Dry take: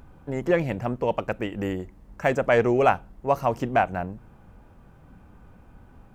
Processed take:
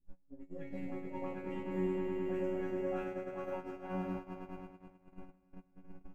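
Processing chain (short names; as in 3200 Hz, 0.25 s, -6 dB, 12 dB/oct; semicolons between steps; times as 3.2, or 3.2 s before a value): notch 3000 Hz, Q 25; dispersion highs, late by 82 ms, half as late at 770 Hz; reverse; compressor 10:1, threshold -35 dBFS, peak gain reduction 20 dB; reverse; low shelf 400 Hz +11.5 dB; resonator bank F#3 fifth, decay 0.82 s; swelling echo 0.105 s, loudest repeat 5, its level -7 dB; gate -48 dBFS, range -25 dB; gain +9 dB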